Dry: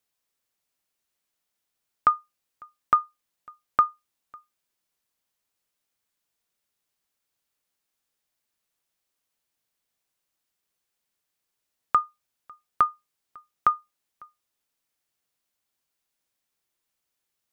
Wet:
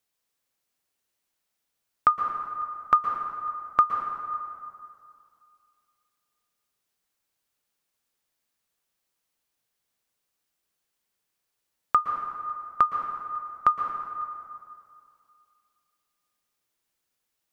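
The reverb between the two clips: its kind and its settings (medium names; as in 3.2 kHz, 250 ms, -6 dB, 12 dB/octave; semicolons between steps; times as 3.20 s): plate-style reverb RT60 2.4 s, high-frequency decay 0.55×, pre-delay 105 ms, DRR 4 dB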